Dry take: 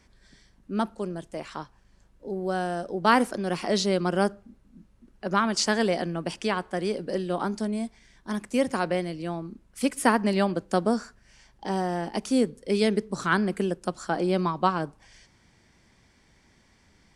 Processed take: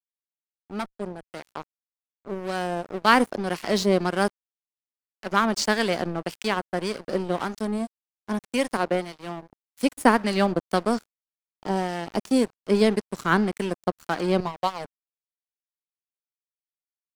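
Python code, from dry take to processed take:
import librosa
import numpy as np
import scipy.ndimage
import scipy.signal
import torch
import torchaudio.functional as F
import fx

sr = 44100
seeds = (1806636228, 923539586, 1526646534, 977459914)

y = fx.cheby1_highpass(x, sr, hz=220.0, order=2, at=(8.77, 9.67))
y = fx.fixed_phaser(y, sr, hz=650.0, stages=4, at=(14.4, 14.85))
y = np.sign(y) * np.maximum(np.abs(y) - 10.0 ** (-35.5 / 20.0), 0.0)
y = fx.harmonic_tremolo(y, sr, hz=1.8, depth_pct=50, crossover_hz=1200.0)
y = fx.tube_stage(y, sr, drive_db=25.0, bias=0.6, at=(0.71, 1.23))
y = F.gain(torch.from_numpy(y), 6.0).numpy()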